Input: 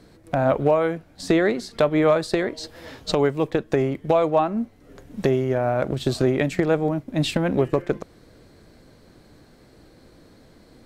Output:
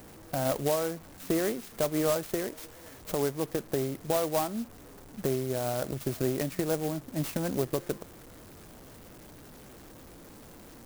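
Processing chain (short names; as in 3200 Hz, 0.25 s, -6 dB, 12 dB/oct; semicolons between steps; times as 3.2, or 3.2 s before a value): delta modulation 64 kbps, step -34.5 dBFS; clock jitter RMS 0.085 ms; gain -9 dB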